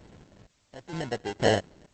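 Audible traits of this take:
aliases and images of a low sample rate 1,200 Hz, jitter 0%
sample-and-hold tremolo 4.3 Hz, depth 95%
a quantiser's noise floor 12 bits, dither triangular
Opus

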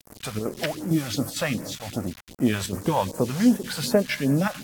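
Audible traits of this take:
chopped level 2.2 Hz, depth 60%, duty 85%
a quantiser's noise floor 6 bits, dither none
phaser sweep stages 2, 2.6 Hz, lowest notch 280–3,400 Hz
AAC

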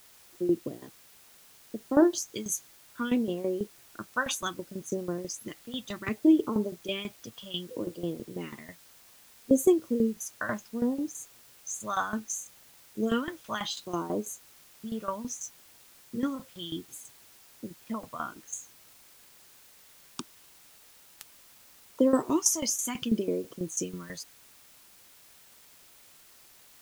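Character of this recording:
tremolo saw down 6.1 Hz, depth 80%
phaser sweep stages 2, 0.65 Hz, lowest notch 340–2,400 Hz
a quantiser's noise floor 10 bits, dither triangular

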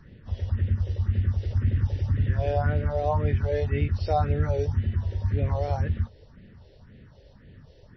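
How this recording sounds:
phaser sweep stages 4, 1.9 Hz, lowest notch 190–1,100 Hz
a quantiser's noise floor 12 bits, dither none
MP3

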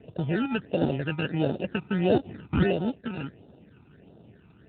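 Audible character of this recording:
aliases and images of a low sample rate 1,100 Hz, jitter 0%
phaser sweep stages 12, 1.5 Hz, lowest notch 550–2,100 Hz
AMR narrowband

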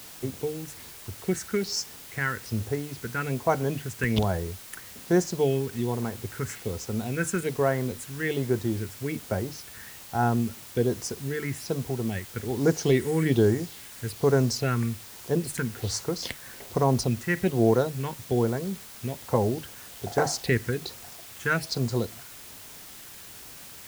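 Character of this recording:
phaser sweep stages 4, 1.2 Hz, lowest notch 670–3,100 Hz
a quantiser's noise floor 8 bits, dither triangular

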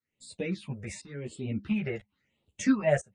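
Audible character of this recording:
phaser sweep stages 6, 0.92 Hz, lowest notch 270–1,700 Hz
tremolo saw up 1 Hz, depth 95%
a shimmering, thickened sound

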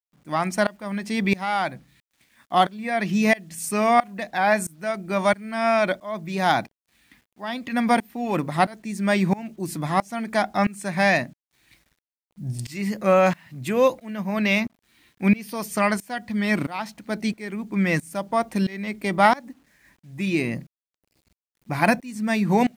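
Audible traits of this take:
tremolo saw up 1.5 Hz, depth 95%
a quantiser's noise floor 12 bits, dither none

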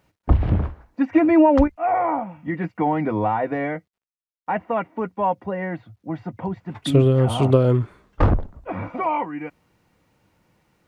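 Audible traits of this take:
background noise floor −90 dBFS
spectral slope −6.0 dB per octave

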